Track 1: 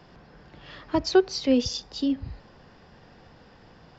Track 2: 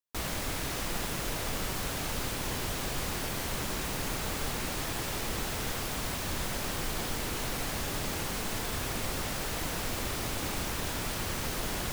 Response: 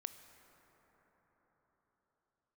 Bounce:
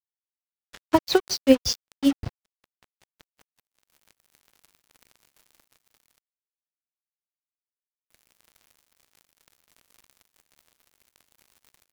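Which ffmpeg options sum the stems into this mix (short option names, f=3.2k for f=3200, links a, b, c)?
-filter_complex "[0:a]dynaudnorm=f=500:g=3:m=12.5dB,aeval=exprs='val(0)*pow(10,-33*(0.5-0.5*cos(2*PI*5.3*n/s))/20)':c=same,volume=2.5dB,asplit=2[a][b];[1:a]equalizer=f=2.2k:w=3.3:g=7,adelay=950,volume=-8dB,asplit=3[c][d][e];[c]atrim=end=6.19,asetpts=PTS-STARTPTS,afade=t=out:st=6.186:d=0.004:c=hsin[f];[d]atrim=start=6.19:end=8.1,asetpts=PTS-STARTPTS,volume=0[g];[e]atrim=start=8.1,asetpts=PTS-STARTPTS,afade=t=in:d=0.004:c=hsin[h];[f][g][h]concat=n=3:v=0:a=1[i];[b]apad=whole_len=567614[j];[i][j]sidechaincompress=threshold=-32dB:ratio=8:attack=30:release=1390[k];[a][k]amix=inputs=2:normalize=0,lowshelf=f=390:g=-5,acrusher=bits=4:mix=0:aa=0.5"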